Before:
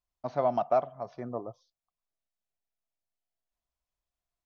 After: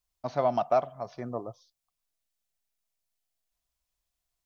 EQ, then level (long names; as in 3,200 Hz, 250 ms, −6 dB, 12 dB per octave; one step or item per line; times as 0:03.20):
low-shelf EQ 130 Hz +5 dB
high-shelf EQ 2,300 Hz +9.5 dB
0.0 dB